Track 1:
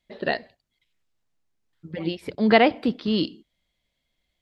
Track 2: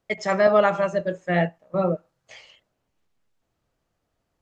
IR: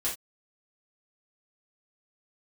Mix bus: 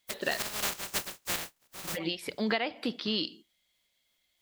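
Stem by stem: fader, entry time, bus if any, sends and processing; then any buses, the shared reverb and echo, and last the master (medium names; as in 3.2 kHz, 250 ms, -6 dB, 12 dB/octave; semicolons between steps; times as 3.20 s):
-2.0 dB, 0.00 s, send -24 dB, tilt EQ +3 dB/octave
-5.5 dB, 0.00 s, no send, spectral contrast reduction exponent 0.11; square tremolo 3.2 Hz, depth 65%, duty 35%; auto duck -7 dB, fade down 0.70 s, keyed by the first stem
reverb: on, pre-delay 3 ms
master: compression 12:1, threshold -26 dBFS, peak gain reduction 14.5 dB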